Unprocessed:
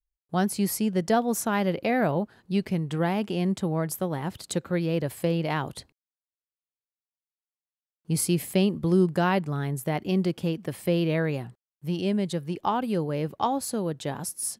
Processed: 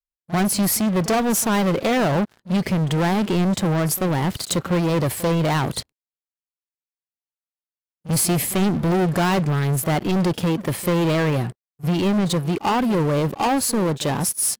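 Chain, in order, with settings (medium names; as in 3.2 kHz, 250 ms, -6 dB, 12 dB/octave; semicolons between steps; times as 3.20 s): waveshaping leveller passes 5; pre-echo 40 ms -17 dB; trim -4.5 dB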